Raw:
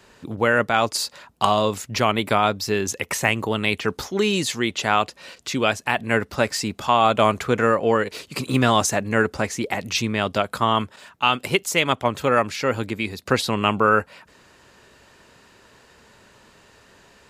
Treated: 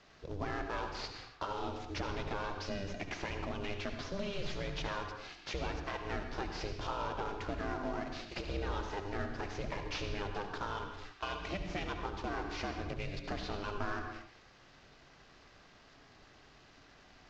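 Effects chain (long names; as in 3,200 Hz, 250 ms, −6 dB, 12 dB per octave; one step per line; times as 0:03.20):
variable-slope delta modulation 32 kbit/s
downward compressor, threshold −27 dBFS, peak gain reduction 12 dB
ring modulation 200 Hz
on a send: low-shelf EQ 140 Hz +9.5 dB + convolution reverb, pre-delay 61 ms, DRR 5 dB
on the sum: level −6.5 dB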